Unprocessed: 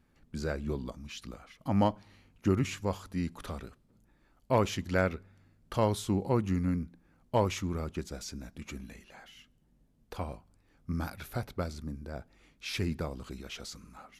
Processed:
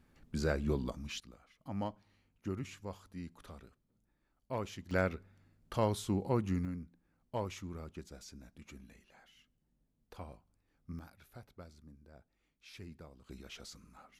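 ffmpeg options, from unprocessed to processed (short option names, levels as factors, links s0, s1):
-af "asetnsamples=n=441:p=0,asendcmd='1.2 volume volume -12dB;4.91 volume volume -4dB;6.65 volume volume -10.5dB;10.99 volume volume -17.5dB;13.29 volume volume -7dB',volume=1.12"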